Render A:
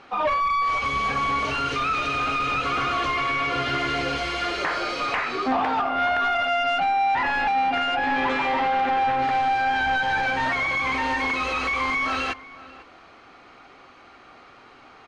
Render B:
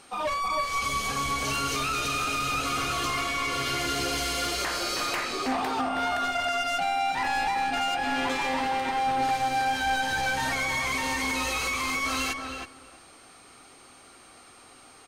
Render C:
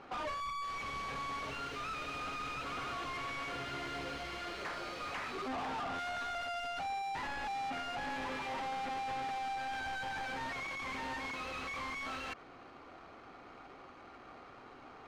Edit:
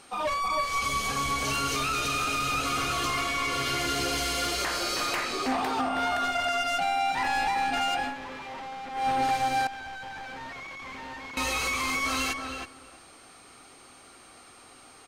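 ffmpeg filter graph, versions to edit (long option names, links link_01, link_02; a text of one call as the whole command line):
ffmpeg -i take0.wav -i take1.wav -i take2.wav -filter_complex "[2:a]asplit=2[link_01][link_02];[1:a]asplit=3[link_03][link_04][link_05];[link_03]atrim=end=8.16[link_06];[link_01]atrim=start=8:end=9.07[link_07];[link_04]atrim=start=8.91:end=9.672[link_08];[link_02]atrim=start=9.668:end=11.372[link_09];[link_05]atrim=start=11.368[link_10];[link_06][link_07]acrossfade=duration=0.16:curve1=tri:curve2=tri[link_11];[link_11][link_08]acrossfade=duration=0.16:curve1=tri:curve2=tri[link_12];[link_12][link_09]acrossfade=duration=0.004:curve1=hsin:curve2=hsin[link_13];[link_13][link_10]acrossfade=duration=0.004:curve1=hsin:curve2=hsin" out.wav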